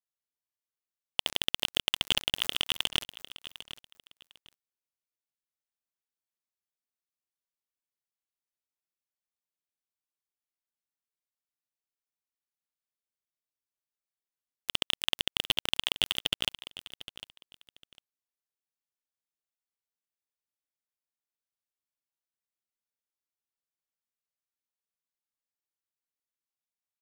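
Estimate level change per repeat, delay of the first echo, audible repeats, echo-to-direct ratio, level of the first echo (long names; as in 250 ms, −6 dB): −13.0 dB, 752 ms, 2, −15.0 dB, −15.0 dB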